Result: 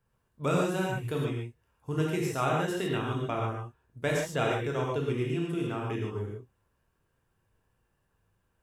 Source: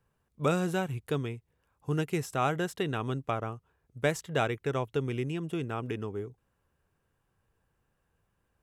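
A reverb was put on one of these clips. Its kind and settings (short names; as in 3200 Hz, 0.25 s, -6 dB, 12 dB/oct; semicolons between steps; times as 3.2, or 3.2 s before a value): non-linear reverb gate 0.17 s flat, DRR -3 dB; gain -3.5 dB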